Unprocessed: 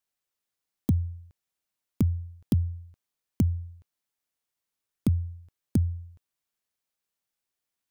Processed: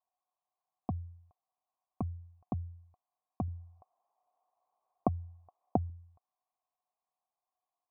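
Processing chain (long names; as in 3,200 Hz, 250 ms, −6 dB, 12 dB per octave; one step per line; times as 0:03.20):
formant resonators in series a
0:03.48–0:05.90: parametric band 630 Hz +13 dB 2.5 octaves
level +15 dB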